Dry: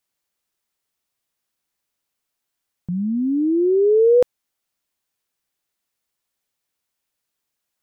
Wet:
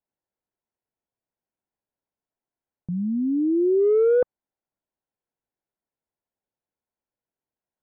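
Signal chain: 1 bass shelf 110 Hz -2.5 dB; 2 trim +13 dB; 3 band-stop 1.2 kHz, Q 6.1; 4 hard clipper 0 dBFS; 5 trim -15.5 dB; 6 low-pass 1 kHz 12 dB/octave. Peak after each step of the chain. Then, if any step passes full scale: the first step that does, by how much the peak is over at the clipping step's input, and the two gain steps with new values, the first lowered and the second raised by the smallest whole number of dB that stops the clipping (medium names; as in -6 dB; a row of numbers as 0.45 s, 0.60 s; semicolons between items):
-9.0 dBFS, +4.0 dBFS, +4.0 dBFS, 0.0 dBFS, -15.5 dBFS, -15.0 dBFS; step 2, 4.0 dB; step 2 +9 dB, step 5 -11.5 dB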